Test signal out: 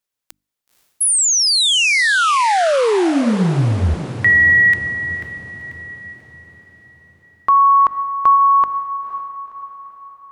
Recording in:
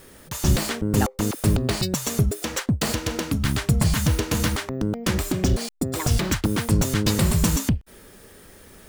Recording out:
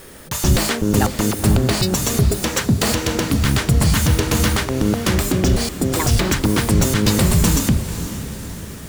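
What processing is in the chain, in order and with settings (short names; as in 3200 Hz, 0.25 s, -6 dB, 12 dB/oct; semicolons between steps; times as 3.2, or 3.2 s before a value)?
in parallel at +3 dB: limiter -16 dBFS; on the sum: notches 50/100/150/200/250/300 Hz; diffused feedback echo 0.505 s, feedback 52%, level -11.5 dB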